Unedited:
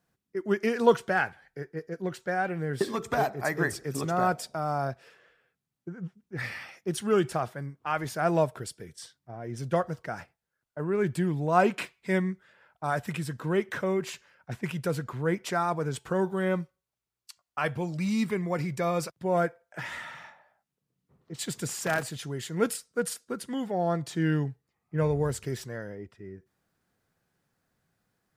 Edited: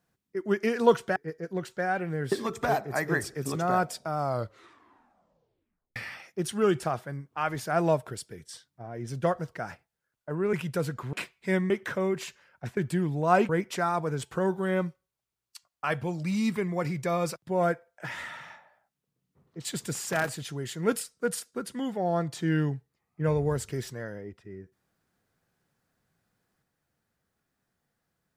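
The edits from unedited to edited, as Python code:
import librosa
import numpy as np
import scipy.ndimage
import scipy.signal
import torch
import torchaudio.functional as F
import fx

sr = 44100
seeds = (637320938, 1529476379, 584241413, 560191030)

y = fx.edit(x, sr, fx.cut(start_s=1.16, length_s=0.49),
    fx.tape_stop(start_s=4.67, length_s=1.78),
    fx.swap(start_s=11.02, length_s=0.72, other_s=14.63, other_length_s=0.6),
    fx.cut(start_s=12.31, length_s=1.25), tone=tone)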